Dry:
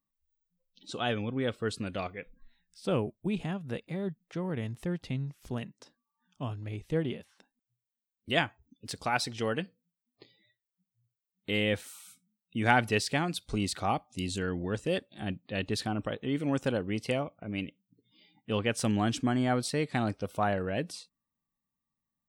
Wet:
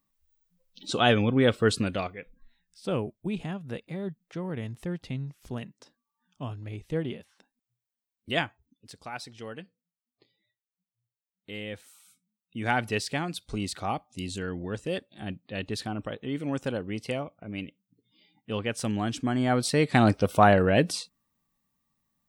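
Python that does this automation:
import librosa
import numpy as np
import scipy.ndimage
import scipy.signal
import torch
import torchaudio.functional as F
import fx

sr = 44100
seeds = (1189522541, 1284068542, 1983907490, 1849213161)

y = fx.gain(x, sr, db=fx.line((1.77, 9.5), (2.18, 0.0), (8.4, 0.0), (8.88, -9.0), (11.73, -9.0), (12.92, -1.0), (19.16, -1.0), (20.08, 10.5)))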